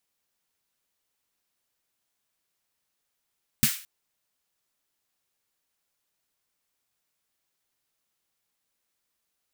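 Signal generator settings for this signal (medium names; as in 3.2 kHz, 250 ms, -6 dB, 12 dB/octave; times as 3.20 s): snare drum length 0.22 s, tones 140 Hz, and 220 Hz, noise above 1.5 kHz, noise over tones -1 dB, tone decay 0.09 s, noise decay 0.40 s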